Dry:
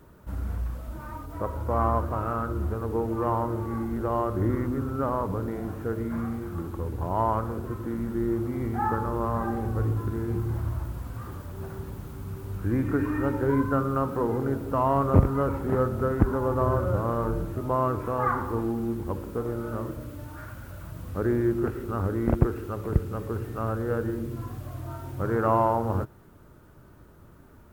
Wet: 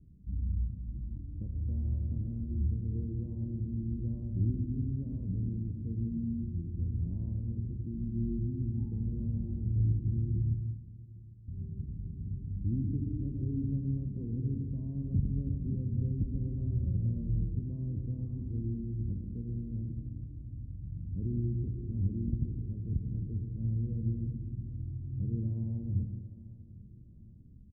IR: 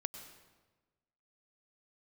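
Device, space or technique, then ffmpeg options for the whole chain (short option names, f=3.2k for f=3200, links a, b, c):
club heard from the street: -filter_complex "[0:a]asettb=1/sr,asplit=3[a][b][c];[a]atrim=end=10.544[d];[b]atrim=start=10.54:end=11.48,asetpts=PTS-STARTPTS,afade=t=in:d=0.004:c=qsin,afade=t=out:st=0.936:d=0.004:c=qsin,aderivative[e];[c]atrim=start=11.476[f];[d][e]acrossfade=d=0.004:c1=hsin:c2=qsin[g];[g][f]acrossfade=d=0.004:c1=qsin:c2=hsin,asplit=2[h][i];[i]adelay=802,lowpass=f=2k:p=1,volume=-21.5dB,asplit=2[j][k];[k]adelay=802,lowpass=f=2k:p=1,volume=0.43,asplit=2[l][m];[m]adelay=802,lowpass=f=2k:p=1,volume=0.43[n];[h][j][l][n]amix=inputs=4:normalize=0,alimiter=limit=-16.5dB:level=0:latency=1:release=144,lowpass=f=220:w=0.5412,lowpass=f=220:w=1.3066[o];[1:a]atrim=start_sample=2205[p];[o][p]afir=irnorm=-1:irlink=0"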